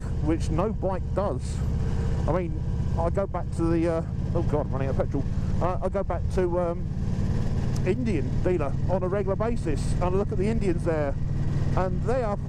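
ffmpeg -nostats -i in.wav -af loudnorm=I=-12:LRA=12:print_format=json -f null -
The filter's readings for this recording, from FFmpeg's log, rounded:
"input_i" : "-27.0",
"input_tp" : "-11.2",
"input_lra" : "0.8",
"input_thresh" : "-37.0",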